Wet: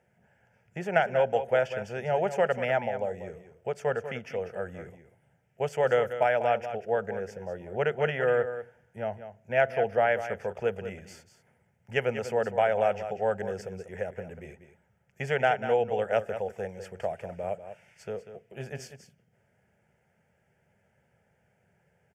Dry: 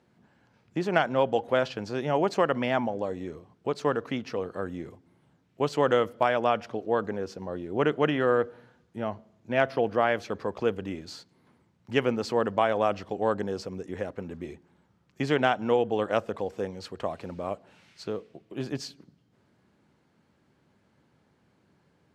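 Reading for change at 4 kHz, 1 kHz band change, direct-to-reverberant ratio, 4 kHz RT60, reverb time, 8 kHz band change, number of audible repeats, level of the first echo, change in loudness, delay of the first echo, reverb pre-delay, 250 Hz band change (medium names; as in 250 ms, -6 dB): -6.0 dB, -1.5 dB, no reverb, no reverb, no reverb, no reading, 1, -11.0 dB, -1.0 dB, 193 ms, no reverb, -9.5 dB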